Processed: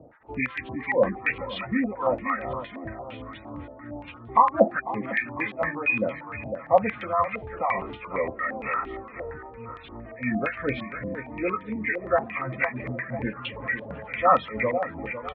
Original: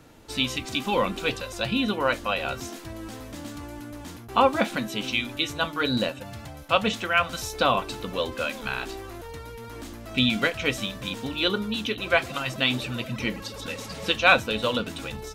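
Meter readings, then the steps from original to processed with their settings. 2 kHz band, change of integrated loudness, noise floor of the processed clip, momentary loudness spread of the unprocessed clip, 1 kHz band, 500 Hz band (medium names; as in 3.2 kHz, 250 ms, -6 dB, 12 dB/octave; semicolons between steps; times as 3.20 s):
-2.0 dB, -1.0 dB, -45 dBFS, 17 LU, +2.0 dB, +1.5 dB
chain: knee-point frequency compression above 1 kHz 1.5:1; high-pass 46 Hz; spectral gate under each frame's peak -20 dB strong; harmonic tremolo 2.8 Hz, depth 100%, crossover 1 kHz; distance through air 170 m; feedback delay 501 ms, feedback 44%, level -11.5 dB; step-sequenced low-pass 8.7 Hz 640–3300 Hz; trim +2 dB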